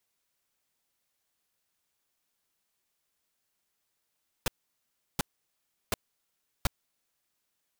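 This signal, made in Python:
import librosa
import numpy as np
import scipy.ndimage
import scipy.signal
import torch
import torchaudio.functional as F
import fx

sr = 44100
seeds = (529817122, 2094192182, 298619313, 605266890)

y = fx.noise_burst(sr, seeds[0], colour='pink', on_s=0.02, off_s=0.71, bursts=4, level_db=-26.0)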